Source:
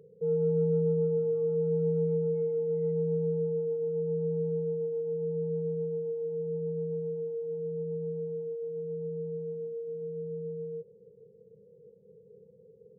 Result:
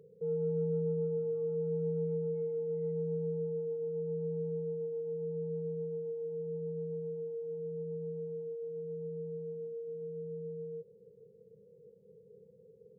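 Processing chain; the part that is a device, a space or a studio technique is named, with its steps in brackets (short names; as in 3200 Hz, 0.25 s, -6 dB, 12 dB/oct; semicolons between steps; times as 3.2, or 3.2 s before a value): parallel compression (in parallel at -3.5 dB: compressor, threshold -40 dBFS, peak gain reduction 15.5 dB); on the sum: gain -7 dB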